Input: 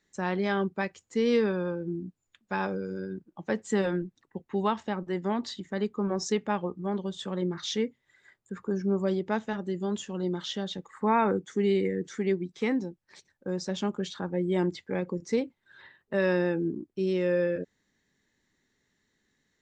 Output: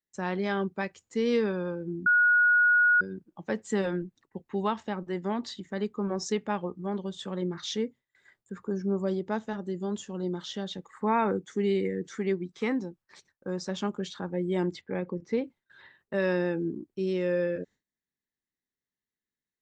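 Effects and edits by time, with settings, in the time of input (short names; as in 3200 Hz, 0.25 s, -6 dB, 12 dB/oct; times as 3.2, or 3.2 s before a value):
2.06–3.01 bleep 1450 Hz -16.5 dBFS
7.75–10.54 dynamic EQ 2400 Hz, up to -5 dB, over -53 dBFS, Q 1.3
12.12–13.87 bell 1200 Hz +5.5 dB
14.81–15.44 LPF 3000 Hz
whole clip: gate with hold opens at -52 dBFS; gain -1.5 dB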